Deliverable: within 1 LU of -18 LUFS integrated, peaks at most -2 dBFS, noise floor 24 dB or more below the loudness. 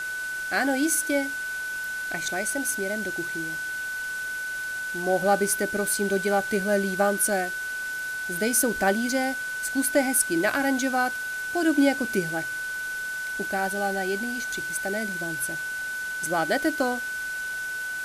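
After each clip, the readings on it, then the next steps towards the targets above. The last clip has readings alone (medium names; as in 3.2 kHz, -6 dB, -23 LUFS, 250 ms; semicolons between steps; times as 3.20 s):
steady tone 1.5 kHz; tone level -29 dBFS; noise floor -32 dBFS; noise floor target -50 dBFS; loudness -26.0 LUFS; peak level -9.0 dBFS; loudness target -18.0 LUFS
-> band-stop 1.5 kHz, Q 30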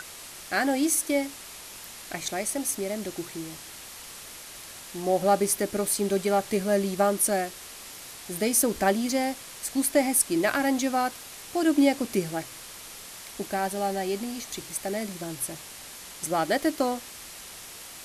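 steady tone not found; noise floor -43 dBFS; noise floor target -51 dBFS
-> noise reduction 8 dB, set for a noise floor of -43 dBFS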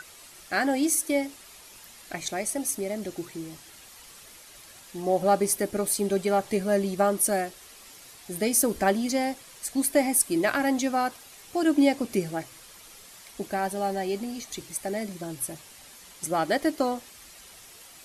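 noise floor -49 dBFS; noise floor target -51 dBFS
-> noise reduction 6 dB, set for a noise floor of -49 dBFS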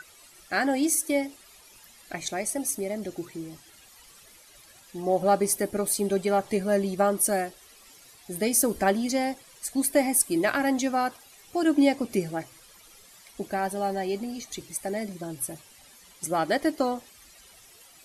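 noise floor -54 dBFS; loudness -26.5 LUFS; peak level -9.5 dBFS; loudness target -18.0 LUFS
-> trim +8.5 dB; peak limiter -2 dBFS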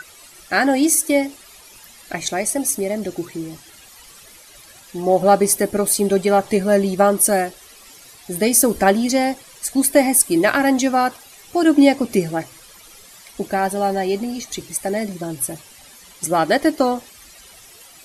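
loudness -18.0 LUFS; peak level -2.0 dBFS; noise floor -45 dBFS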